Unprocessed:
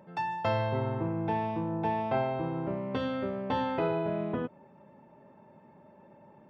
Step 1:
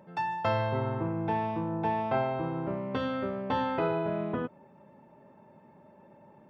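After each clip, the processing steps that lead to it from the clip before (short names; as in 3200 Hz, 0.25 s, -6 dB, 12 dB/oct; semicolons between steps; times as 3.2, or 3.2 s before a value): dynamic EQ 1300 Hz, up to +4 dB, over -46 dBFS, Q 2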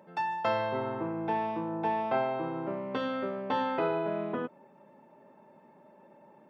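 HPF 220 Hz 12 dB/oct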